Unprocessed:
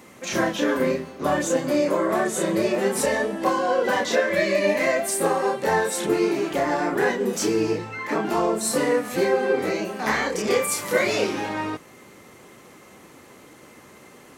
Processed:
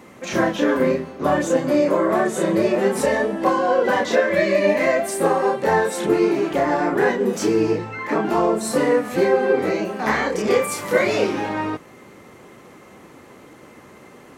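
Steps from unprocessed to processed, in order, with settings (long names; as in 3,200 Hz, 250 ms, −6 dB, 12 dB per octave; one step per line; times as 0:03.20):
high-shelf EQ 3,000 Hz −8.5 dB
level +4 dB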